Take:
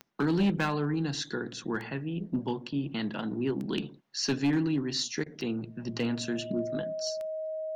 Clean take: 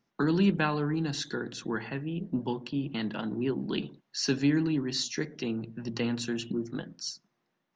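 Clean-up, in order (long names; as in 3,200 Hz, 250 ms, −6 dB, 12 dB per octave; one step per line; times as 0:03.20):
clipped peaks rebuilt −21 dBFS
click removal
notch filter 630 Hz, Q 30
repair the gap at 0:05.24, 21 ms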